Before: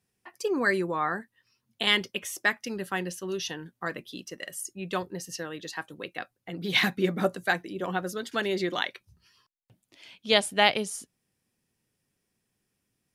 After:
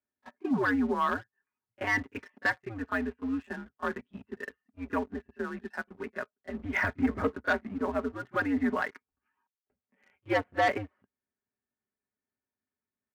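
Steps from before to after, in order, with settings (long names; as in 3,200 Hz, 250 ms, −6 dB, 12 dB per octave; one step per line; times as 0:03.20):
comb filter 5.8 ms, depth 68%
single-sideband voice off tune −110 Hz 270–2,100 Hz
leveller curve on the samples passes 2
echo ahead of the sound 31 ms −23 dB
level −8 dB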